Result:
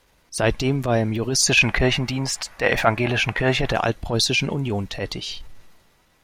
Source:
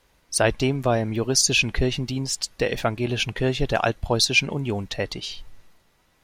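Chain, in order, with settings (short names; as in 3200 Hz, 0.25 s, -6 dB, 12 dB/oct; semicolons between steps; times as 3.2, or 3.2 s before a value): 1.42–3.73 band shelf 1200 Hz +10.5 dB 2.3 oct; transient shaper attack -10 dB, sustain +2 dB; gain +3 dB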